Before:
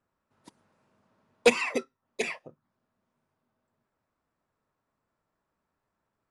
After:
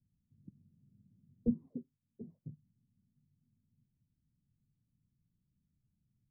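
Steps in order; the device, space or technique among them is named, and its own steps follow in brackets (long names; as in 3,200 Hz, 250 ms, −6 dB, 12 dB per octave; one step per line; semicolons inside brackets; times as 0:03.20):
0:01.68–0:02.45: low-shelf EQ 410 Hz −8.5 dB
the neighbour's flat through the wall (low-pass filter 200 Hz 24 dB per octave; parametric band 130 Hz +5.5 dB)
level +7 dB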